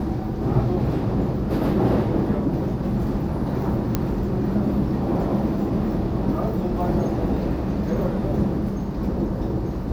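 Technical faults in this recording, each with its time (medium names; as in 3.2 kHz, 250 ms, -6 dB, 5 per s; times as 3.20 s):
3.95 s: pop -7 dBFS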